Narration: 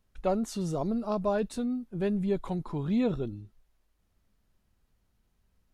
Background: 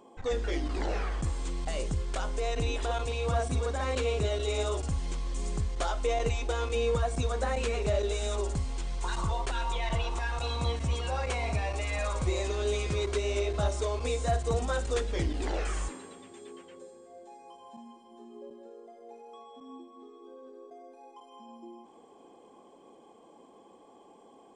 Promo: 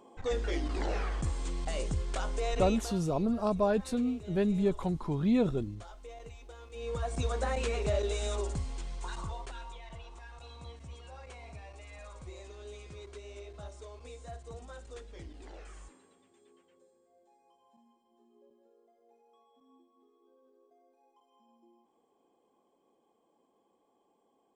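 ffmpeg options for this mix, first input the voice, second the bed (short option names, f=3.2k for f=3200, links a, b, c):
-filter_complex "[0:a]adelay=2350,volume=0.5dB[a];[1:a]volume=15.5dB,afade=t=out:st=2.58:d=0.42:silence=0.133352,afade=t=in:st=6.71:d=0.54:silence=0.141254,afade=t=out:st=8.27:d=1.56:silence=0.177828[b];[a][b]amix=inputs=2:normalize=0"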